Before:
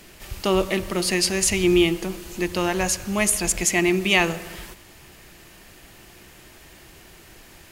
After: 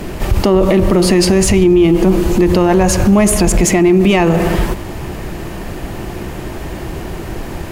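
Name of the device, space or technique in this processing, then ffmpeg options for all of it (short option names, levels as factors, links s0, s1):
mastering chain: -af "equalizer=f=950:t=o:w=0.77:g=2.5,acompressor=threshold=0.0794:ratio=2.5,asoftclip=type=tanh:threshold=0.2,tiltshelf=f=1200:g=8.5,alimiter=level_in=11.2:limit=0.891:release=50:level=0:latency=1,volume=0.75"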